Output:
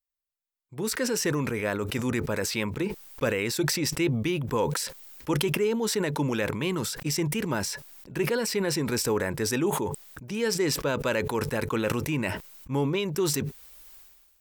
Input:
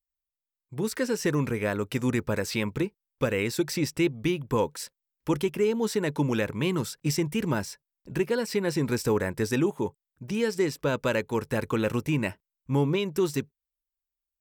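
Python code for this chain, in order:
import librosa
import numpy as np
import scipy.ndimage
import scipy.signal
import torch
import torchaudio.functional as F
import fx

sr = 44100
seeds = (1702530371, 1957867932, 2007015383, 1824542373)

y = fx.low_shelf(x, sr, hz=260.0, db=-5.5)
y = fx.sustainer(y, sr, db_per_s=39.0)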